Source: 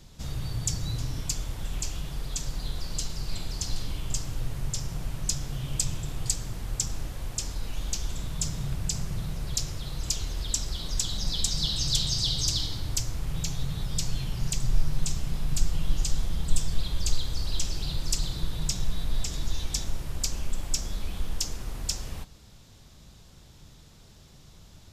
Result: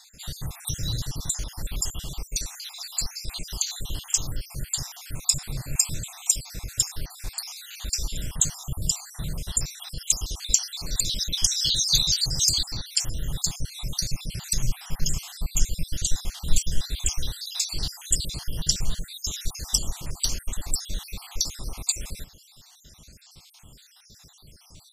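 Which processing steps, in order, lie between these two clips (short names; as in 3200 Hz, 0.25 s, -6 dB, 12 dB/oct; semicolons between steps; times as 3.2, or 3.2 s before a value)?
random spectral dropouts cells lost 62%; high shelf 2800 Hz +10.5 dB; gain +2 dB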